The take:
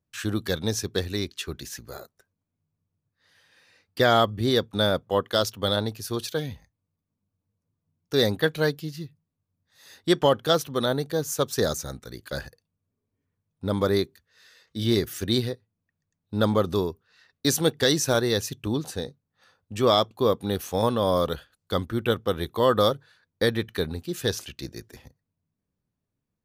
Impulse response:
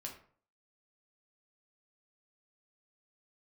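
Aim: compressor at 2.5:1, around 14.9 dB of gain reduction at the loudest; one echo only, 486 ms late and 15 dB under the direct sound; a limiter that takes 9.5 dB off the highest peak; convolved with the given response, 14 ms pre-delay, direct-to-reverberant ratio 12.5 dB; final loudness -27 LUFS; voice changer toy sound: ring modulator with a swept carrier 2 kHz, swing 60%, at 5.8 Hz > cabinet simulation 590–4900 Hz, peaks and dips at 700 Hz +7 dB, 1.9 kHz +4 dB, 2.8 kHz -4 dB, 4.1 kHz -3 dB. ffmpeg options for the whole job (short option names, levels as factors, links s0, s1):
-filter_complex "[0:a]acompressor=threshold=0.0112:ratio=2.5,alimiter=level_in=1.88:limit=0.0631:level=0:latency=1,volume=0.531,aecho=1:1:486:0.178,asplit=2[s0][s1];[1:a]atrim=start_sample=2205,adelay=14[s2];[s1][s2]afir=irnorm=-1:irlink=0,volume=0.316[s3];[s0][s3]amix=inputs=2:normalize=0,aeval=exprs='val(0)*sin(2*PI*2000*n/s+2000*0.6/5.8*sin(2*PI*5.8*n/s))':c=same,highpass=590,equalizer=f=700:t=q:w=4:g=7,equalizer=f=1900:t=q:w=4:g=4,equalizer=f=2800:t=q:w=4:g=-4,equalizer=f=4100:t=q:w=4:g=-3,lowpass=f=4900:w=0.5412,lowpass=f=4900:w=1.3066,volume=6.68"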